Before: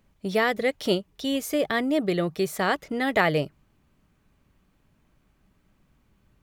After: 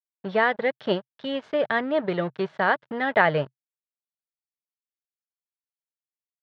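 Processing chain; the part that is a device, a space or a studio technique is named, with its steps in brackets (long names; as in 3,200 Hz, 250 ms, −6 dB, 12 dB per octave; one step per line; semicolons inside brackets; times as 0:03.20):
blown loudspeaker (dead-zone distortion −38.5 dBFS; loudspeaker in its box 120–3,500 Hz, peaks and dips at 130 Hz +6 dB, 300 Hz −5 dB, 610 Hz +4 dB, 910 Hz +6 dB, 1,600 Hz +7 dB, 2,400 Hz −4 dB)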